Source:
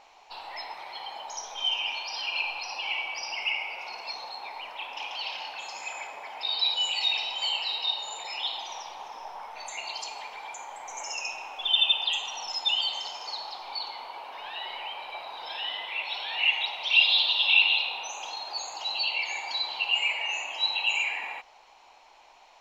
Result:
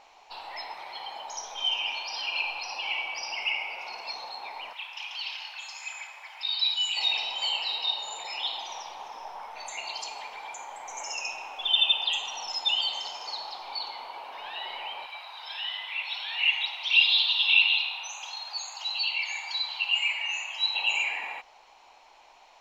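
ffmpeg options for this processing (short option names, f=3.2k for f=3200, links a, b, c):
-filter_complex "[0:a]asettb=1/sr,asplit=3[a][b][c];[a]atrim=end=4.734[d];[b]atrim=start=4.73:end=6.97,asetpts=PTS-STARTPTS,afade=t=in:d=0.004:c=qsin,afade=t=out:st=2.236:d=0.004:c=qsin,highpass=1.4k[e];[c]atrim=start=6.966[f];[d][e]acrossfade=d=0.004:c1=hsin:c2=qsin[g];[g][f]acrossfade=d=0.004:c1=qsin:c2=hsin,asettb=1/sr,asplit=3[h][i][j];[h]atrim=end=15.064[k];[i]atrim=start=15.06:end=20.75,asetpts=PTS-STARTPTS,afade=t=in:d=0.004:c=qsin,afade=t=out:st=5.686:d=0.004:c=qsin,highpass=1.1k[l];[j]atrim=start=20.746[m];[k][l]acrossfade=d=0.004:c1=hsin:c2=qsin[n];[n][m]acrossfade=d=0.004:c1=qsin:c2=hsin"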